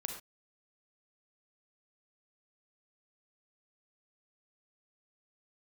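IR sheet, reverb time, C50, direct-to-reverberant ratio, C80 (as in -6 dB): not exponential, 5.0 dB, 3.0 dB, 9.0 dB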